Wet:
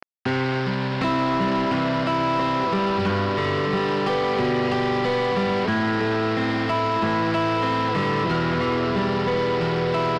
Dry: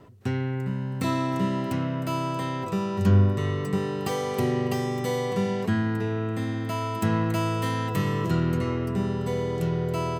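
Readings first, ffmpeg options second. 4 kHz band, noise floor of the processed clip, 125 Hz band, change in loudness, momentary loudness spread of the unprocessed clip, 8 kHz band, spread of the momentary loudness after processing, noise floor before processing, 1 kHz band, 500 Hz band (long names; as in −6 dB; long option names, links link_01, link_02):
+9.0 dB, −25 dBFS, −2.5 dB, +4.0 dB, 5 LU, can't be measured, 1 LU, −31 dBFS, +9.0 dB, +6.0 dB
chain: -filter_complex "[0:a]acrossover=split=320|750[link_01][link_02][link_03];[link_01]acompressor=threshold=-26dB:ratio=4[link_04];[link_02]acompressor=threshold=-37dB:ratio=4[link_05];[link_03]acompressor=threshold=-37dB:ratio=4[link_06];[link_04][link_05][link_06]amix=inputs=3:normalize=0,aecho=1:1:1176|2352|3528|4704:0.119|0.0606|0.0309|0.0158,aresample=11025,acrusher=bits=6:mix=0:aa=0.000001,aresample=44100,asplit=2[link_07][link_08];[link_08]highpass=frequency=720:poles=1,volume=27dB,asoftclip=type=tanh:threshold=-9dB[link_09];[link_07][link_09]amix=inputs=2:normalize=0,lowpass=frequency=1800:poles=1,volume=-6dB,volume=-2.5dB"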